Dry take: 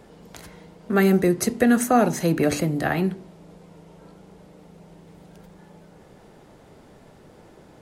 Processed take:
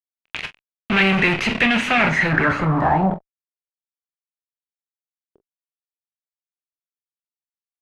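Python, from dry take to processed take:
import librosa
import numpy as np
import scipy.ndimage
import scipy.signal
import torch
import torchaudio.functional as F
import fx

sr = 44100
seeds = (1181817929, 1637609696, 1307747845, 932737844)

y = fx.tone_stack(x, sr, knobs='5-5-5')
y = fx.fuzz(y, sr, gain_db=56.0, gate_db=-50.0)
y = fx.room_early_taps(y, sr, ms=(26, 44), db=(-11.5, -14.0))
y = fx.filter_sweep_lowpass(y, sr, from_hz=2600.0, to_hz=400.0, start_s=1.93, end_s=3.71, q=4.4)
y = y * librosa.db_to_amplitude(-4.5)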